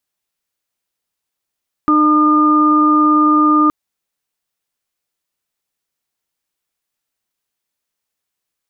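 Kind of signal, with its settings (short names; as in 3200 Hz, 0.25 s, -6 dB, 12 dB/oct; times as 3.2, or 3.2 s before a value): steady additive tone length 1.82 s, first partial 303 Hz, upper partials -19/-17.5/0.5 dB, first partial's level -11.5 dB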